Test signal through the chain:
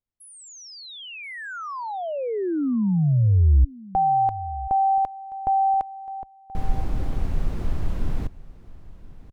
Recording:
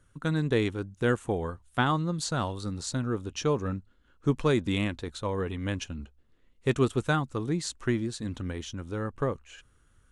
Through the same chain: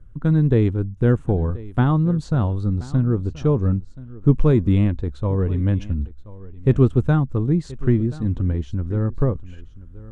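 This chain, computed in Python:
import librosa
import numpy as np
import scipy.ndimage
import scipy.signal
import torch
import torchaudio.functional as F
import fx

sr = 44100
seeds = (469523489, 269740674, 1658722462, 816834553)

y = fx.tilt_eq(x, sr, slope=-4.5)
y = y + 10.0 ** (-19.0 / 20.0) * np.pad(y, (int(1029 * sr / 1000.0), 0))[:len(y)]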